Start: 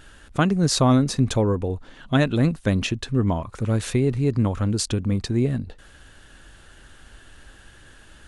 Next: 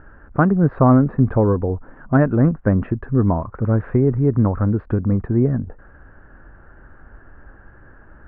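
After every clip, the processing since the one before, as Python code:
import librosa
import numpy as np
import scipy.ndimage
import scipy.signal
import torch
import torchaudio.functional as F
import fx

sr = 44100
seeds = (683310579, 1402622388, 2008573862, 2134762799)

y = scipy.signal.sosfilt(scipy.signal.butter(6, 1600.0, 'lowpass', fs=sr, output='sos'), x)
y = y * 10.0 ** (4.5 / 20.0)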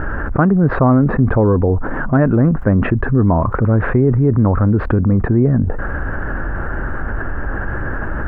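y = fx.env_flatten(x, sr, amount_pct=70)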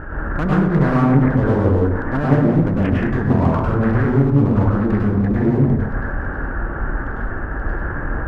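y = fx.clip_asym(x, sr, top_db=-12.0, bottom_db=-6.5)
y = fx.rev_plate(y, sr, seeds[0], rt60_s=1.0, hf_ratio=0.45, predelay_ms=90, drr_db=-5.5)
y = fx.doppler_dist(y, sr, depth_ms=0.44)
y = y * 10.0 ** (-8.5 / 20.0)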